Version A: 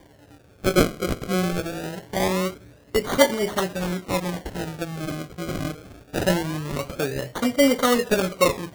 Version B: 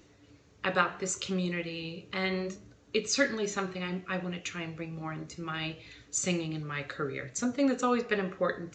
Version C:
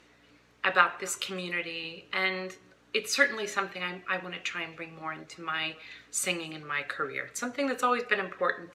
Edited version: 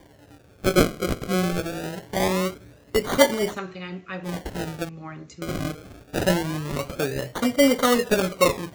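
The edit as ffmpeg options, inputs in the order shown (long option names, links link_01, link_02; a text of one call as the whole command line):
ffmpeg -i take0.wav -i take1.wav -filter_complex "[1:a]asplit=2[link_01][link_02];[0:a]asplit=3[link_03][link_04][link_05];[link_03]atrim=end=3.59[link_06];[link_01]atrim=start=3.49:end=4.33[link_07];[link_04]atrim=start=4.23:end=4.892[link_08];[link_02]atrim=start=4.888:end=5.422[link_09];[link_05]atrim=start=5.418[link_10];[link_06][link_07]acrossfade=duration=0.1:curve1=tri:curve2=tri[link_11];[link_11][link_08]acrossfade=duration=0.1:curve1=tri:curve2=tri[link_12];[link_12][link_09]acrossfade=duration=0.004:curve1=hsin:curve2=hsin[link_13];[link_13][link_10]acrossfade=duration=0.004:curve1=hsin:curve2=hsin" out.wav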